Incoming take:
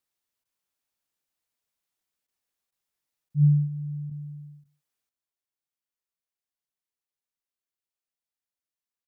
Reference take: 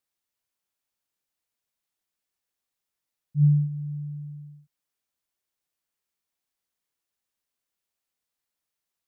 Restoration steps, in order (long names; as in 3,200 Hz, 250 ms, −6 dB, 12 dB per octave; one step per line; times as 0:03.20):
repair the gap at 0:00.44/0:02.27/0:02.71/0:03.29/0:04.10/0:04.64, 11 ms
echo removal 145 ms −21 dB
level correction +9.5 dB, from 0:05.09